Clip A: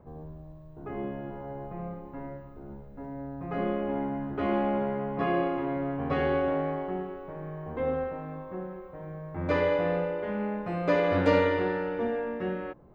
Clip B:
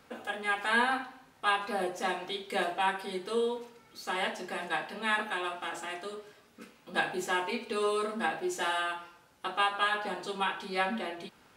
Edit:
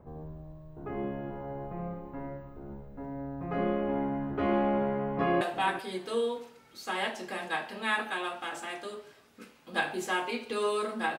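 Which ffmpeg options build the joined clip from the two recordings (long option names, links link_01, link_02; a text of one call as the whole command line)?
ffmpeg -i cue0.wav -i cue1.wav -filter_complex "[0:a]apad=whole_dur=11.18,atrim=end=11.18,atrim=end=5.412[link_01];[1:a]atrim=start=2.608:end=8.38[link_02];[link_01][link_02]acrossfade=duration=0.004:curve1=hsin:curve2=hsin,asplit=2[link_03][link_04];[link_04]afade=type=in:start_time=5.15:duration=0.01,afade=type=out:start_time=5.41:duration=0.01,aecho=0:1:380|760:0.211349|0.0317023[link_05];[link_03][link_05]amix=inputs=2:normalize=0" out.wav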